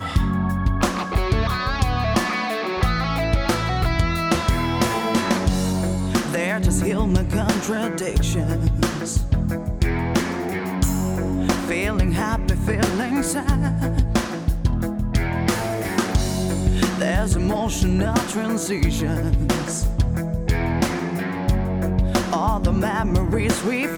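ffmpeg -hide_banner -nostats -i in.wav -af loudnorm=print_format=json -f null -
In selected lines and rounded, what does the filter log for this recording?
"input_i" : "-21.9",
"input_tp" : "-9.1",
"input_lra" : "1.3",
"input_thresh" : "-31.9",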